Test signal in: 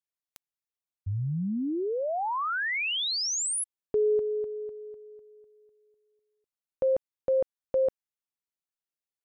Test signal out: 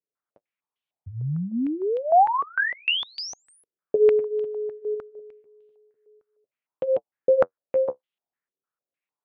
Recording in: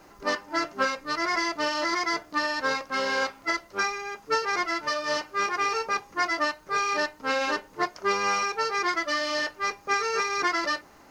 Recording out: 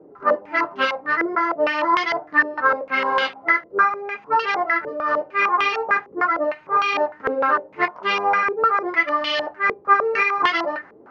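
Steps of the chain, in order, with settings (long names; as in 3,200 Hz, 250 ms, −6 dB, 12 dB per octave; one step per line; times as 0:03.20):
high-pass filter 120 Hz 12 dB per octave
flanger 0.44 Hz, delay 6.3 ms, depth 8.6 ms, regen −37%
low-pass on a step sequencer 6.6 Hz 440–3,100 Hz
level +6.5 dB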